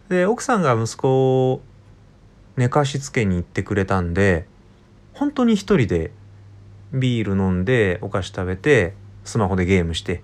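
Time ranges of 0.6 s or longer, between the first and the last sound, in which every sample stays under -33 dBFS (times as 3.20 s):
1.58–2.57 s
4.43–5.16 s
6.09–6.92 s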